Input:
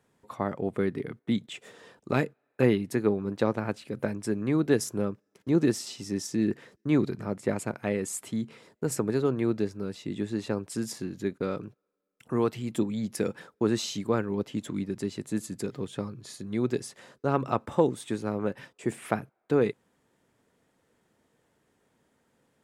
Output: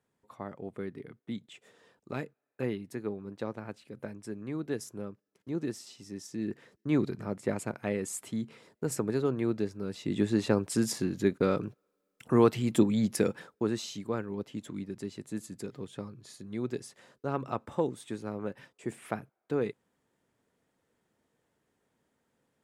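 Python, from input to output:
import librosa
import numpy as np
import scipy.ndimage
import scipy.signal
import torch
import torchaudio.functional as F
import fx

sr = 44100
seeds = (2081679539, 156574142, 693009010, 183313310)

y = fx.gain(x, sr, db=fx.line((6.2, -10.5), (6.96, -3.0), (9.8, -3.0), (10.2, 4.0), (13.06, 4.0), (13.81, -6.5)))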